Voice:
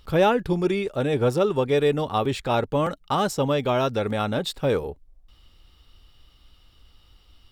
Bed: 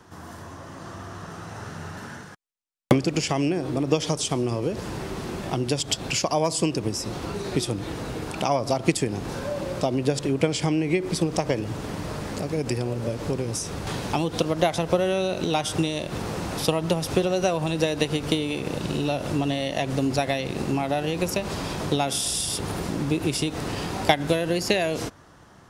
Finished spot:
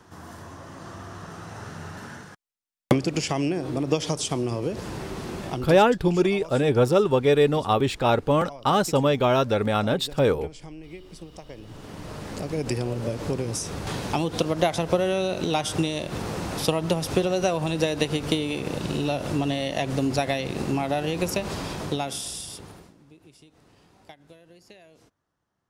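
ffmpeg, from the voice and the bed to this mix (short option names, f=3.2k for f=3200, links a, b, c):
-filter_complex "[0:a]adelay=5550,volume=2dB[a];[1:a]volume=16.5dB,afade=t=out:st=5.45:d=0.41:silence=0.141254,afade=t=in:st=11.51:d=1.21:silence=0.125893,afade=t=out:st=21.43:d=1.51:silence=0.0421697[b];[a][b]amix=inputs=2:normalize=0"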